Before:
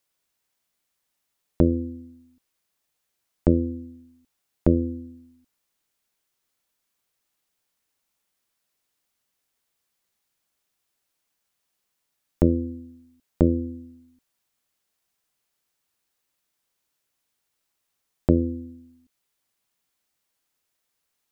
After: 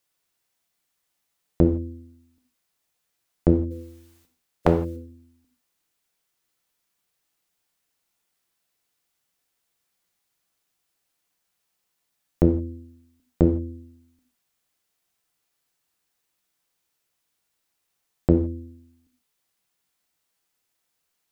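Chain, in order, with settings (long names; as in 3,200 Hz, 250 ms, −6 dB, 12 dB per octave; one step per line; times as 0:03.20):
0:03.70–0:04.95: ceiling on every frequency bin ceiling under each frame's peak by 22 dB
reverb whose tail is shaped and stops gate 190 ms falling, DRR 5 dB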